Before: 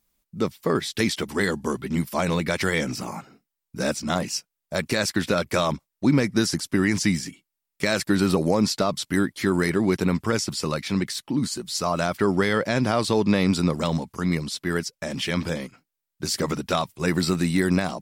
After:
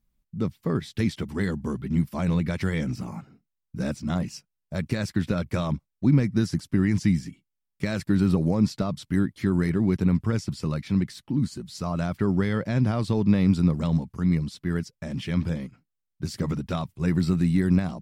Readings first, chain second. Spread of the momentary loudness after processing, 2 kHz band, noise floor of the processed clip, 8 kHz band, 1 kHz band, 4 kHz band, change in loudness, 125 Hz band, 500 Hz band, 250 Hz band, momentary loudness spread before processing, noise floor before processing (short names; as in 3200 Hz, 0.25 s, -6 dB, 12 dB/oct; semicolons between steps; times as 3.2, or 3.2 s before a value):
11 LU, -9.0 dB, -82 dBFS, -13.5 dB, -9.0 dB, -11.5 dB, -1.5 dB, +3.5 dB, -7.0 dB, 0.0 dB, 8 LU, -84 dBFS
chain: tone controls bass +15 dB, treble -5 dB; gain -9 dB